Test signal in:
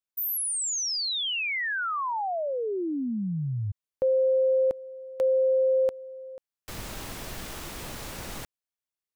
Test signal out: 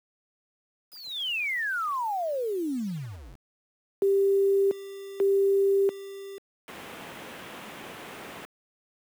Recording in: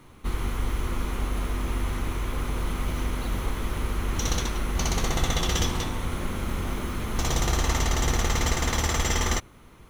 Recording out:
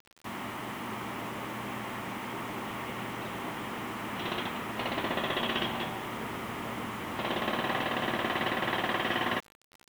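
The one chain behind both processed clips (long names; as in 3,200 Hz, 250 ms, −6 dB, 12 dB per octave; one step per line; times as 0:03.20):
single-sideband voice off tune −130 Hz 310–3,500 Hz
bit-depth reduction 8 bits, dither none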